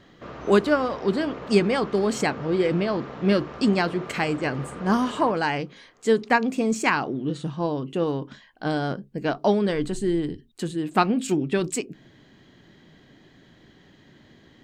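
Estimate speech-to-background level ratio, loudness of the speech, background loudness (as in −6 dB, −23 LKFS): 14.5 dB, −24.5 LKFS, −39.0 LKFS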